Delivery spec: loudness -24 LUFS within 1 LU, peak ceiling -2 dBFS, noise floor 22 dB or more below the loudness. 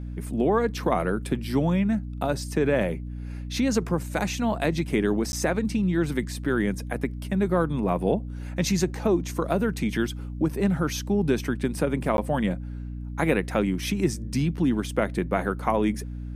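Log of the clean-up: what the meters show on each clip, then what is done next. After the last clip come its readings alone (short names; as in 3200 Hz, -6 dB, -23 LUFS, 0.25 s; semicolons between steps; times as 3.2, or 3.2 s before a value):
dropouts 2; longest dropout 11 ms; hum 60 Hz; harmonics up to 300 Hz; hum level -32 dBFS; loudness -26.0 LUFS; peak -8.0 dBFS; loudness target -24.0 LUFS
-> interpolate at 5.32/12.17, 11 ms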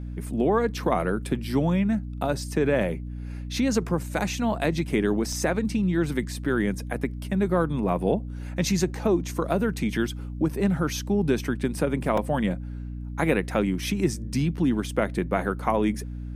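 dropouts 0; hum 60 Hz; harmonics up to 300 Hz; hum level -32 dBFS
-> de-hum 60 Hz, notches 5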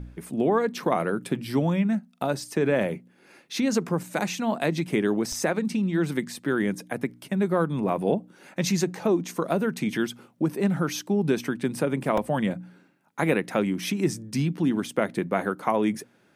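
hum none; loudness -26.5 LUFS; peak -9.0 dBFS; loudness target -24.0 LUFS
-> gain +2.5 dB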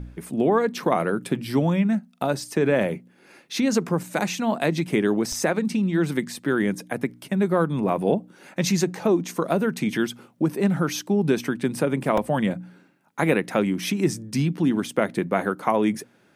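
loudness -24.0 LUFS; peak -6.5 dBFS; noise floor -59 dBFS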